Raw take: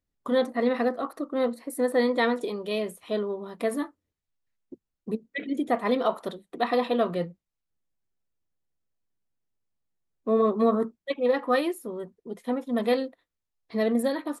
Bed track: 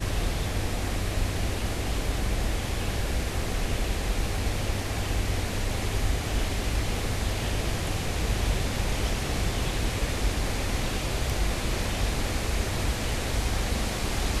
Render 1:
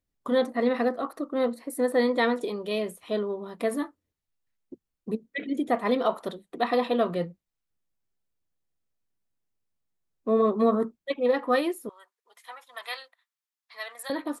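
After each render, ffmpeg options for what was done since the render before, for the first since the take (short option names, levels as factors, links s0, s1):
-filter_complex "[0:a]asettb=1/sr,asplit=3[s0][s1][s2];[s0]atrim=end=11.894[s3];[s1]atrim=start=11.89:end=14.1,asetpts=PTS-STARTPTS,afade=t=in:d=0.004:c=qsin,afade=t=out:st=2.206:d=0.004:c=qsin,highpass=f=980:w=0.5412,highpass=f=980:w=1.3066[s4];[s2]atrim=start=14.096[s5];[s3][s4]acrossfade=d=0.004:c1=hsin:c2=qsin[s6];[s6][s5]acrossfade=d=0.004:c1=qsin:c2=hsin"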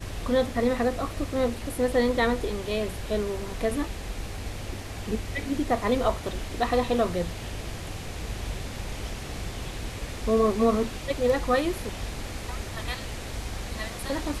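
-filter_complex "[1:a]volume=0.447[s0];[0:a][s0]amix=inputs=2:normalize=0"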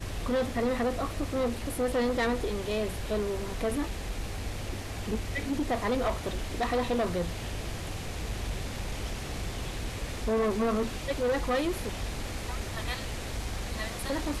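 -af "asoftclip=type=tanh:threshold=0.0708"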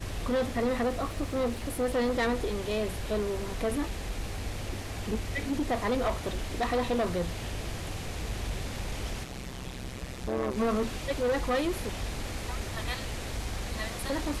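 -filter_complex "[0:a]asettb=1/sr,asplit=3[s0][s1][s2];[s0]atrim=end=0.894[s3];[s1]atrim=start=0.89:end=2.07,asetpts=PTS-STARTPTS,afade=t=in:d=0.004:c=qsin,afade=t=out:st=1.176:d=0.004:c=qsin,aeval=exprs='sgn(val(0))*max(abs(val(0))-0.00158,0)':c=same[s4];[s2]atrim=start=2.066[s5];[s3][s4]acrossfade=d=0.004:c1=hsin:c2=qsin[s6];[s6][s5]acrossfade=d=0.004:c1=qsin:c2=hsin,asplit=3[s7][s8][s9];[s7]afade=t=out:st=9.23:d=0.02[s10];[s8]tremolo=f=130:d=0.947,afade=t=in:st=9.23:d=0.02,afade=t=out:st=10.56:d=0.02[s11];[s9]afade=t=in:st=10.56:d=0.02[s12];[s10][s11][s12]amix=inputs=3:normalize=0"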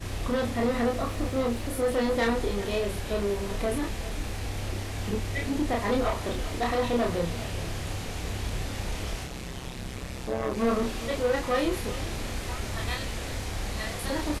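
-filter_complex "[0:a]asplit=2[s0][s1];[s1]adelay=30,volume=0.794[s2];[s0][s2]amix=inputs=2:normalize=0,aecho=1:1:394:0.168"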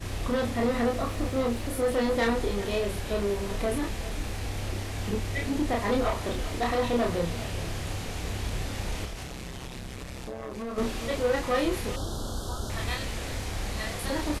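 -filter_complex "[0:a]asettb=1/sr,asplit=3[s0][s1][s2];[s0]atrim=end=9.054[s3];[s1]atrim=start=9.05:end=10.78,asetpts=PTS-STARTPTS,afade=t=in:d=0.004:c=qsin,afade=t=out:st=1.726:d=0.004:c=qsin,acompressor=threshold=0.0224:ratio=5:attack=3.2:release=140:knee=1:detection=peak[s4];[s2]atrim=start=10.776[s5];[s3][s4]acrossfade=d=0.004:c1=hsin:c2=qsin[s6];[s6][s5]acrossfade=d=0.004:c1=qsin:c2=hsin,asettb=1/sr,asplit=3[s7][s8][s9];[s7]atrim=end=11.964[s10];[s8]atrim=start=11.96:end=12.7,asetpts=PTS-STARTPTS,afade=t=in:d=0.004:c=qsin,afade=t=out:st=0.736:d=0.004:c=qsin,asuperstop=centerf=2200:order=8:qfactor=1.3[s11];[s9]atrim=start=12.696[s12];[s10][s11]acrossfade=d=0.004:c1=hsin:c2=qsin[s13];[s13][s12]acrossfade=d=0.004:c1=qsin:c2=hsin"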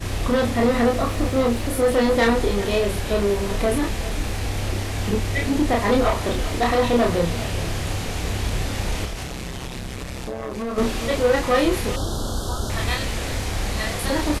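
-af "volume=2.37"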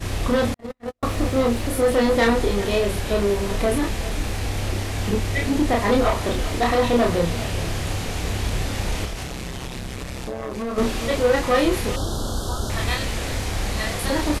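-filter_complex "[0:a]asettb=1/sr,asplit=3[s0][s1][s2];[s0]atrim=end=0.544[s3];[s1]atrim=start=0.54:end=1.03,asetpts=PTS-STARTPTS,afade=t=in:d=0.004:c=qsin,afade=t=out:st=0.486:d=0.004:c=qsin,agate=range=0.00126:threshold=0.178:ratio=16:release=100:detection=peak[s4];[s2]atrim=start=1.026[s5];[s3][s4]acrossfade=d=0.004:c1=hsin:c2=qsin[s6];[s6][s5]acrossfade=d=0.004:c1=qsin:c2=hsin"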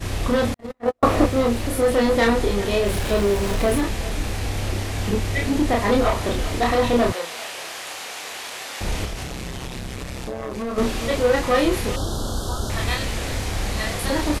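-filter_complex "[0:a]asettb=1/sr,asplit=3[s0][s1][s2];[s0]atrim=end=0.744[s3];[s1]atrim=start=0.74:end=1.26,asetpts=PTS-STARTPTS,afade=t=in:d=0.004:c=qsin,afade=t=out:st=0.516:d=0.004:c=qsin,equalizer=f=670:w=0.37:g=10.5[s4];[s2]atrim=start=1.256[s5];[s3][s4]acrossfade=d=0.004:c1=hsin:c2=qsin[s6];[s6][s5]acrossfade=d=0.004:c1=qsin:c2=hsin,asettb=1/sr,asplit=3[s7][s8][s9];[s7]atrim=end=2.864[s10];[s8]atrim=start=2.86:end=3.81,asetpts=PTS-STARTPTS,afade=t=in:d=0.004:c=qsin,afade=t=out:st=0.946:d=0.004:c=qsin,aeval=exprs='val(0)+0.5*0.0335*sgn(val(0))':c=same[s11];[s9]atrim=start=3.806[s12];[s10][s11]acrossfade=d=0.004:c1=hsin:c2=qsin[s13];[s13][s12]acrossfade=d=0.004:c1=qsin:c2=hsin,asettb=1/sr,asplit=3[s14][s15][s16];[s14]atrim=end=7.124[s17];[s15]atrim=start=7.12:end=8.81,asetpts=PTS-STARTPTS,afade=t=in:d=0.004:c=qsin,afade=t=out:st=1.686:d=0.004:c=qsin,highpass=750[s18];[s16]atrim=start=8.806[s19];[s17][s18]acrossfade=d=0.004:c1=hsin:c2=qsin[s20];[s20][s19]acrossfade=d=0.004:c1=qsin:c2=hsin"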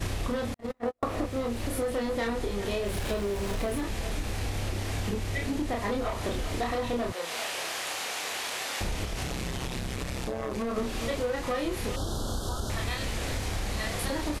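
-af "acompressor=threshold=0.0398:ratio=6"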